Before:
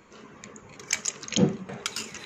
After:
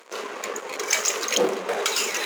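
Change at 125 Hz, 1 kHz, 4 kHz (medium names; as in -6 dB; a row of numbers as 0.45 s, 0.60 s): under -15 dB, +12.5 dB, +7.0 dB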